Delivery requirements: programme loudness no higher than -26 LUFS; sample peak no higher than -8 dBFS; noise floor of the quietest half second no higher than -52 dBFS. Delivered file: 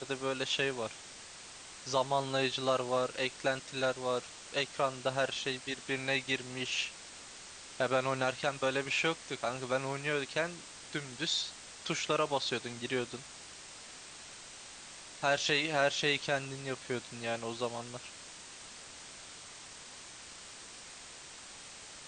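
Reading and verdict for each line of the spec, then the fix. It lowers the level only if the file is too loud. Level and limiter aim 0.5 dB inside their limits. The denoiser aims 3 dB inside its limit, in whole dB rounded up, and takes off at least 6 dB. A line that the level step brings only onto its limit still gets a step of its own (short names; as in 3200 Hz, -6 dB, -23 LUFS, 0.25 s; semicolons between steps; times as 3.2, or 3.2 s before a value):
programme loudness -33.5 LUFS: OK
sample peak -15.5 dBFS: OK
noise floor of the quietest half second -50 dBFS: fail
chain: denoiser 6 dB, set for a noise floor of -50 dBFS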